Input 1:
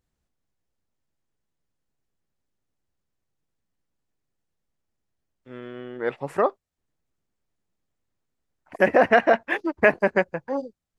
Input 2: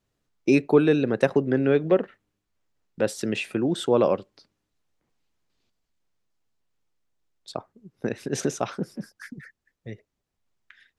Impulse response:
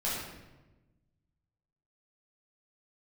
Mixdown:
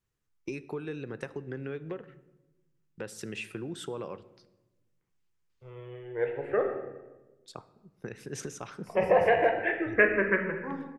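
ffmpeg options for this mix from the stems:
-filter_complex "[0:a]lowpass=2000,agate=range=-33dB:threshold=-54dB:ratio=3:detection=peak,asplit=2[link_01][link_02];[link_02]afreqshift=-0.31[link_03];[link_01][link_03]amix=inputs=2:normalize=1,adelay=150,volume=-1.5dB,asplit=2[link_04][link_05];[link_05]volume=-6.5dB[link_06];[1:a]acompressor=threshold=-24dB:ratio=6,volume=-5.5dB,asplit=2[link_07][link_08];[link_08]volume=-21dB[link_09];[2:a]atrim=start_sample=2205[link_10];[link_06][link_09]amix=inputs=2:normalize=0[link_11];[link_11][link_10]afir=irnorm=-1:irlink=0[link_12];[link_04][link_07][link_12]amix=inputs=3:normalize=0,equalizer=frequency=250:width_type=o:width=0.67:gain=-8,equalizer=frequency=630:width_type=o:width=0.67:gain=-10,equalizer=frequency=4000:width_type=o:width=0.67:gain=-5"

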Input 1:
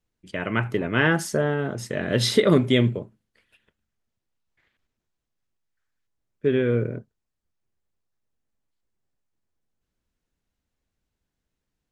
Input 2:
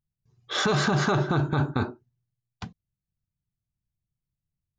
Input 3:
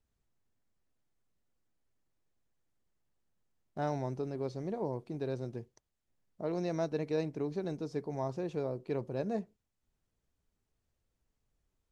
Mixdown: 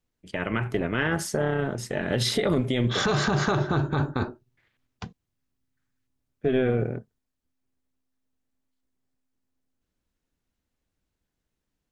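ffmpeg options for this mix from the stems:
ffmpeg -i stem1.wav -i stem2.wav -filter_complex "[0:a]volume=2dB[link_01];[1:a]adelay=2400,volume=2dB[link_02];[link_01][link_02]amix=inputs=2:normalize=0,tremolo=f=260:d=0.519,alimiter=limit=-13.5dB:level=0:latency=1:release=56" out.wav

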